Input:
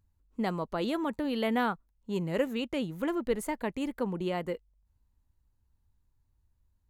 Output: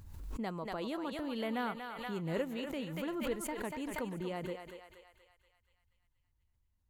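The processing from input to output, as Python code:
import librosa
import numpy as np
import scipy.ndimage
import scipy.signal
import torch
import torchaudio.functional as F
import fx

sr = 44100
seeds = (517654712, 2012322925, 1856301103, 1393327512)

p1 = x + fx.echo_thinned(x, sr, ms=238, feedback_pct=57, hz=610.0, wet_db=-5.5, dry=0)
p2 = fx.pre_swell(p1, sr, db_per_s=41.0)
y = p2 * librosa.db_to_amplitude(-8.0)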